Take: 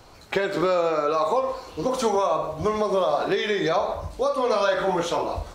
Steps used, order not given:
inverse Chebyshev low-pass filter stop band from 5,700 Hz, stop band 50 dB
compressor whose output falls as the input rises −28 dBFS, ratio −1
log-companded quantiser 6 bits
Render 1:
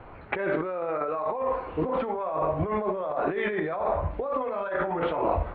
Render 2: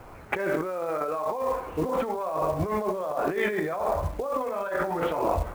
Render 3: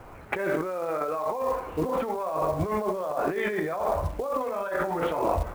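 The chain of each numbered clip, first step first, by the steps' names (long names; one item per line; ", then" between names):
log-companded quantiser, then compressor whose output falls as the input rises, then inverse Chebyshev low-pass filter
inverse Chebyshev low-pass filter, then log-companded quantiser, then compressor whose output falls as the input rises
compressor whose output falls as the input rises, then inverse Chebyshev low-pass filter, then log-companded quantiser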